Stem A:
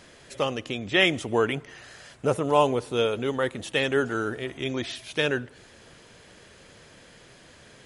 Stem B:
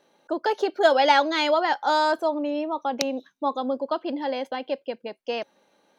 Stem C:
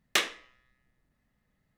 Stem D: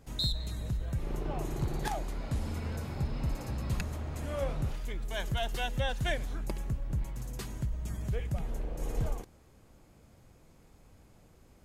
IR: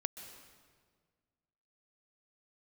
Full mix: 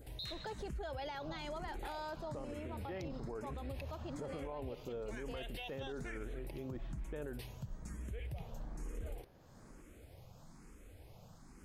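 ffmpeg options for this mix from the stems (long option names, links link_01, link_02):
-filter_complex "[0:a]lowpass=1000,adelay=1950,volume=-10.5dB[link_01];[1:a]volume=-15.5dB[link_02];[2:a]acompressor=threshold=-34dB:ratio=4,adelay=100,volume=-7.5dB[link_03];[3:a]adynamicequalizer=threshold=0.002:dfrequency=2500:dqfactor=1.8:tfrequency=2500:tqfactor=1.8:attack=5:release=100:ratio=0.375:range=3.5:mode=boostabove:tftype=bell,acompressor=mode=upward:threshold=-38dB:ratio=2.5,asplit=2[link_04][link_05];[link_05]afreqshift=1.1[link_06];[link_04][link_06]amix=inputs=2:normalize=1,volume=-5dB[link_07];[link_01][link_02][link_03][link_07]amix=inputs=4:normalize=0,alimiter=level_in=11.5dB:limit=-24dB:level=0:latency=1:release=59,volume=-11.5dB"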